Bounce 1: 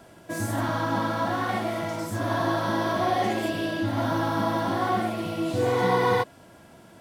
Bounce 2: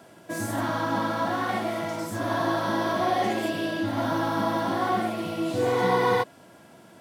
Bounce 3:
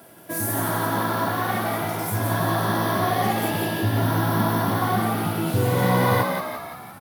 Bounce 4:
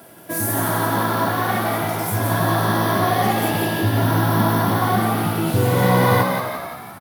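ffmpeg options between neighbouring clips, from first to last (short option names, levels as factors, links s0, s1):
-af "highpass=130"
-filter_complex "[0:a]aexciter=amount=7.8:drive=2.3:freq=10000,asplit=8[s0][s1][s2][s3][s4][s5][s6][s7];[s1]adelay=172,afreqshift=64,volume=0.596[s8];[s2]adelay=344,afreqshift=128,volume=0.32[s9];[s3]adelay=516,afreqshift=192,volume=0.174[s10];[s4]adelay=688,afreqshift=256,volume=0.0933[s11];[s5]adelay=860,afreqshift=320,volume=0.0507[s12];[s6]adelay=1032,afreqshift=384,volume=0.0272[s13];[s7]adelay=1204,afreqshift=448,volume=0.0148[s14];[s0][s8][s9][s10][s11][s12][s13][s14]amix=inputs=8:normalize=0,asubboost=boost=7.5:cutoff=140,volume=1.19"
-af "aecho=1:1:261:0.188,volume=1.5"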